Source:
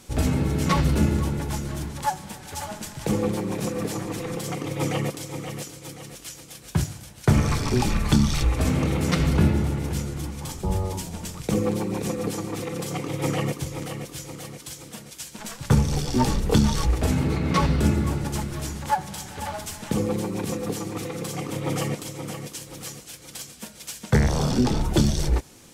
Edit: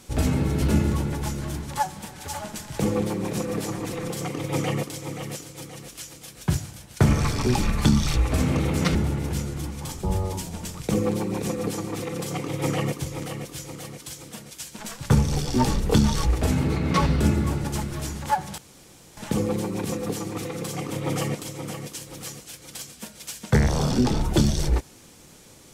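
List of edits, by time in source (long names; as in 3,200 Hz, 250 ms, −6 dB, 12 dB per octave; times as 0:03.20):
0:00.62–0:00.89: remove
0:09.22–0:09.55: remove
0:19.18–0:19.77: fill with room tone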